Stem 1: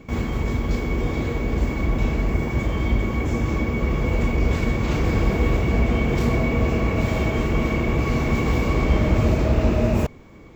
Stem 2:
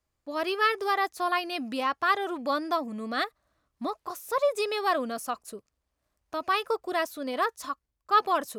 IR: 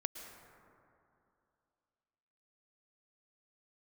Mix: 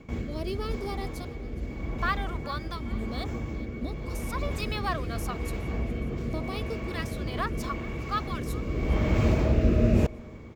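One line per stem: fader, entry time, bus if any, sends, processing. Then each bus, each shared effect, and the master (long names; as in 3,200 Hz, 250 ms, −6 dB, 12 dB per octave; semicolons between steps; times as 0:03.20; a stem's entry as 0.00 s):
−2.5 dB, 0.00 s, send −14 dB, no echo send, rotating-speaker cabinet horn 0.85 Hz; automatic ducking −13 dB, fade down 0.45 s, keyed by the second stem
+0.5 dB, 0.00 s, muted 0:01.25–0:02.00, no send, echo send −20 dB, downward compressor 1.5 to 1, threshold −34 dBFS, peak gain reduction 6.5 dB; all-pass phaser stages 2, 0.36 Hz, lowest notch 230–1,800 Hz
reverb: on, RT60 2.7 s, pre-delay 103 ms
echo: repeating echo 415 ms, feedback 56%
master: linearly interpolated sample-rate reduction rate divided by 2×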